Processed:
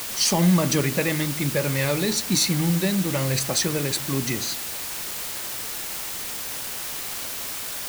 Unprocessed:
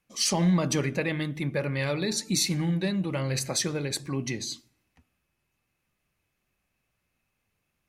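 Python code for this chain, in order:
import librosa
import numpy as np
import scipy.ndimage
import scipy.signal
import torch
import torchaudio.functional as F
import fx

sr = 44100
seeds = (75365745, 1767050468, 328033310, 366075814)

y = fx.quant_dither(x, sr, seeds[0], bits=6, dither='triangular')
y = F.gain(torch.from_numpy(y), 4.5).numpy()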